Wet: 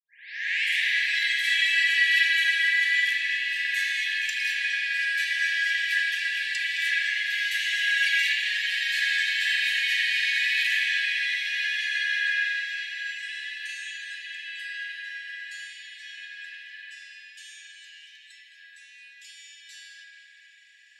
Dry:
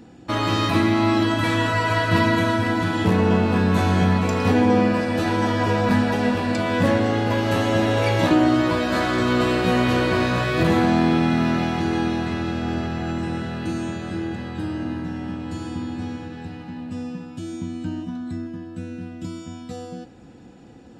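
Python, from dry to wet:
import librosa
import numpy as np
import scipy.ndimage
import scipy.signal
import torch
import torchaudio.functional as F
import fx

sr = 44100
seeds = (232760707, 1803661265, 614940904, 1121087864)

y = fx.tape_start_head(x, sr, length_s=0.86)
y = fx.brickwall_highpass(y, sr, low_hz=1600.0)
y = fx.echo_tape(y, sr, ms=215, feedback_pct=71, wet_db=-7.0, lp_hz=3500.0, drive_db=15.0, wow_cents=13)
y = fx.rev_spring(y, sr, rt60_s=2.5, pass_ms=(39,), chirp_ms=40, drr_db=-5.0)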